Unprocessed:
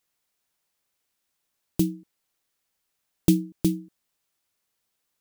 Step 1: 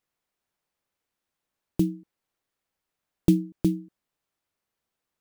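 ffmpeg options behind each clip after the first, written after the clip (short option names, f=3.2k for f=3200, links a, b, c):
-af "highshelf=f=2.7k:g=-10.5"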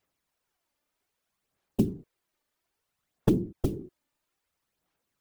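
-af "acompressor=threshold=-27dB:ratio=3,afftfilt=real='hypot(re,im)*cos(2*PI*random(0))':imag='hypot(re,im)*sin(2*PI*random(1))':win_size=512:overlap=0.75,aphaser=in_gain=1:out_gain=1:delay=3.4:decay=0.41:speed=0.61:type=sinusoidal,volume=8dB"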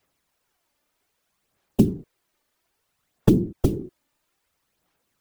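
-filter_complex "[0:a]acrossover=split=370|3000[a][b][c];[b]acompressor=threshold=-32dB:ratio=6[d];[a][d][c]amix=inputs=3:normalize=0,volume=7.5dB"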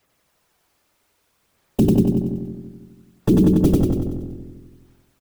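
-filter_complex "[0:a]asplit=2[a][b];[b]aecho=0:1:94|188|282|376|470|564|658:0.708|0.368|0.191|0.0995|0.0518|0.0269|0.014[c];[a][c]amix=inputs=2:normalize=0,alimiter=limit=-13dB:level=0:latency=1:release=14,asplit=2[d][e];[e]adelay=165,lowpass=f=820:p=1,volume=-5dB,asplit=2[f][g];[g]adelay=165,lowpass=f=820:p=1,volume=0.53,asplit=2[h][i];[i]adelay=165,lowpass=f=820:p=1,volume=0.53,asplit=2[j][k];[k]adelay=165,lowpass=f=820:p=1,volume=0.53,asplit=2[l][m];[m]adelay=165,lowpass=f=820:p=1,volume=0.53,asplit=2[n][o];[o]adelay=165,lowpass=f=820:p=1,volume=0.53,asplit=2[p][q];[q]adelay=165,lowpass=f=820:p=1,volume=0.53[r];[f][h][j][l][n][p][r]amix=inputs=7:normalize=0[s];[d][s]amix=inputs=2:normalize=0,volume=5.5dB"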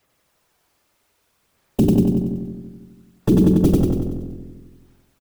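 -filter_complex "[0:a]asplit=2[a][b];[b]adelay=44,volume=-13dB[c];[a][c]amix=inputs=2:normalize=0"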